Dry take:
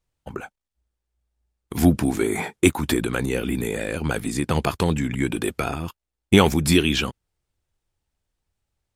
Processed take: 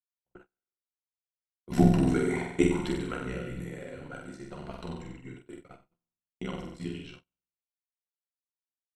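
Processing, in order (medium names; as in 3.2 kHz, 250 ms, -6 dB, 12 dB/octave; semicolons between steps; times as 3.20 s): Doppler pass-by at 1.97 s, 12 m/s, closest 7.4 m; rippled EQ curve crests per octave 2, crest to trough 10 dB; AM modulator 68 Hz, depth 95%; distance through air 72 m; on a send: flutter echo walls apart 8 m, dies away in 0.84 s; on the sum: flange 0.63 Hz, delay 4.3 ms, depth 3.4 ms, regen -49%; feedback comb 180 Hz, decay 0.19 s, harmonics all, mix 50%; gate -48 dBFS, range -39 dB; trim +4.5 dB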